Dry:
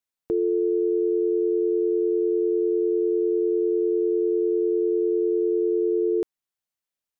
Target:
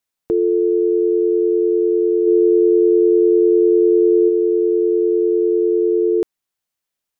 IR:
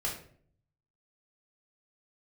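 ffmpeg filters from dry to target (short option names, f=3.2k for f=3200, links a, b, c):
-filter_complex "[0:a]asplit=3[a][b][c];[a]afade=t=out:st=2.26:d=0.02[d];[b]lowshelf=f=460:g=5.5,afade=t=in:st=2.26:d=0.02,afade=t=out:st=4.28:d=0.02[e];[c]afade=t=in:st=4.28:d=0.02[f];[d][e][f]amix=inputs=3:normalize=0,volume=6.5dB"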